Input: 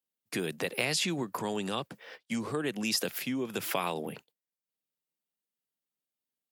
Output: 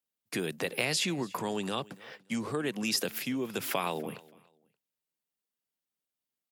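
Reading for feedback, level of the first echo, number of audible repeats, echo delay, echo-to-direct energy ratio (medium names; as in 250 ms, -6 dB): 26%, -22.0 dB, 2, 288 ms, -21.5 dB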